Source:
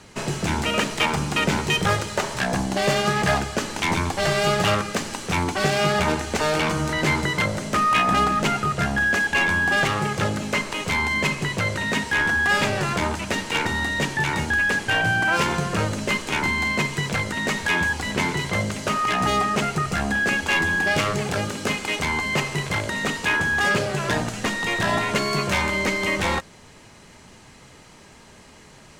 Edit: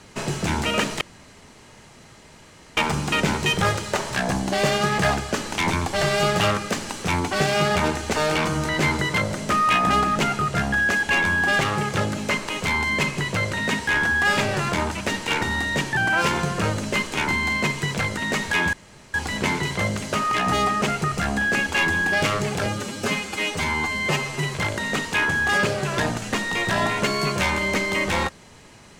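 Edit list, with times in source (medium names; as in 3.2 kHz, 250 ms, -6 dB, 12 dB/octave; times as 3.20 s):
1.01 s: insert room tone 1.76 s
14.21–15.12 s: delete
17.88 s: insert room tone 0.41 s
21.40–22.65 s: stretch 1.5×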